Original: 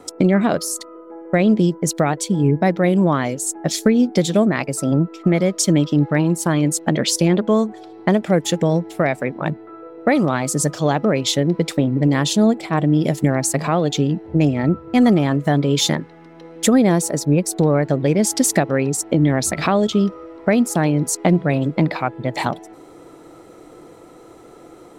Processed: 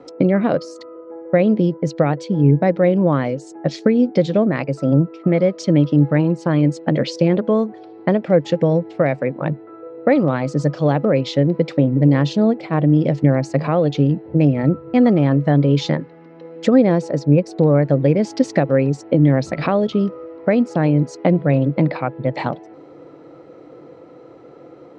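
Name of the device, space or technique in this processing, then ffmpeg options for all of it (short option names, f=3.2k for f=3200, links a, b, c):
guitar cabinet: -af "highpass=76,equalizer=f=140:t=q:w=4:g=8,equalizer=f=280:t=q:w=4:g=5,equalizer=f=520:t=q:w=4:g=9,equalizer=f=3.5k:t=q:w=4:g=-6,lowpass=f=4.5k:w=0.5412,lowpass=f=4.5k:w=1.3066,volume=-3dB"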